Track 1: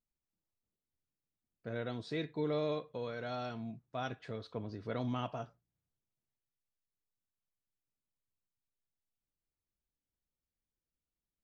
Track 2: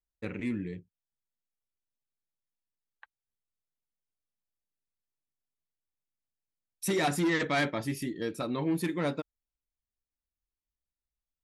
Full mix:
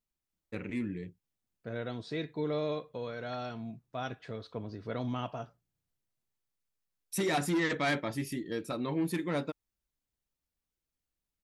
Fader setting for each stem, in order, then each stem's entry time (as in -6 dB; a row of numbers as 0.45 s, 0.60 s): +1.5 dB, -2.0 dB; 0.00 s, 0.30 s